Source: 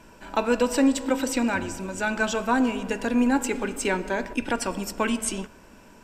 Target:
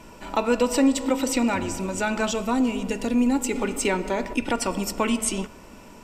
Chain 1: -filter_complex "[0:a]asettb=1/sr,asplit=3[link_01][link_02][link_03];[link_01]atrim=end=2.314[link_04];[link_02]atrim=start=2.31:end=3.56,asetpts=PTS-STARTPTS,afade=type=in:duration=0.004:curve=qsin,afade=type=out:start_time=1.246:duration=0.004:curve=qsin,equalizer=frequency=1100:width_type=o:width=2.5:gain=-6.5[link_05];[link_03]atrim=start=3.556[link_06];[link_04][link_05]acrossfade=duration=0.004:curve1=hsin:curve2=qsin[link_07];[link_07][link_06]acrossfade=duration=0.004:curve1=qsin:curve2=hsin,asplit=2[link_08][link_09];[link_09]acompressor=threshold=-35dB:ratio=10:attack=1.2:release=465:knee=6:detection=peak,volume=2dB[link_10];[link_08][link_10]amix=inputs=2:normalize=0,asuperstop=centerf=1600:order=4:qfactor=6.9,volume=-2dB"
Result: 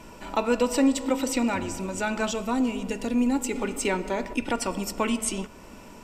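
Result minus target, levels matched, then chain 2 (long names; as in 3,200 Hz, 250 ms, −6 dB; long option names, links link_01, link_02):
downward compressor: peak gain reduction +10 dB
-filter_complex "[0:a]asettb=1/sr,asplit=3[link_01][link_02][link_03];[link_01]atrim=end=2.314[link_04];[link_02]atrim=start=2.31:end=3.56,asetpts=PTS-STARTPTS,afade=type=in:duration=0.004:curve=qsin,afade=type=out:start_time=1.246:duration=0.004:curve=qsin,equalizer=frequency=1100:width_type=o:width=2.5:gain=-6.5[link_05];[link_03]atrim=start=3.556[link_06];[link_04][link_05]acrossfade=duration=0.004:curve1=hsin:curve2=qsin[link_07];[link_07][link_06]acrossfade=duration=0.004:curve1=qsin:curve2=hsin,asplit=2[link_08][link_09];[link_09]acompressor=threshold=-24dB:ratio=10:attack=1.2:release=465:knee=6:detection=peak,volume=2dB[link_10];[link_08][link_10]amix=inputs=2:normalize=0,asuperstop=centerf=1600:order=4:qfactor=6.9,volume=-2dB"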